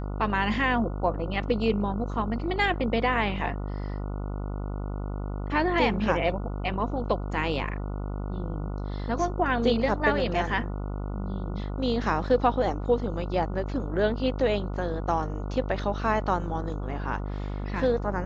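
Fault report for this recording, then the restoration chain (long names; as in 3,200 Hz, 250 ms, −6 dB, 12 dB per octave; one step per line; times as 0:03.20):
mains buzz 50 Hz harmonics 29 −32 dBFS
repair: hum removal 50 Hz, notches 29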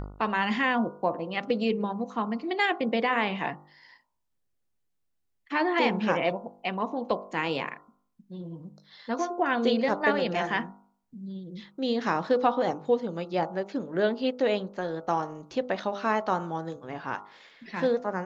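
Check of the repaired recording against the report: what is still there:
none of them is left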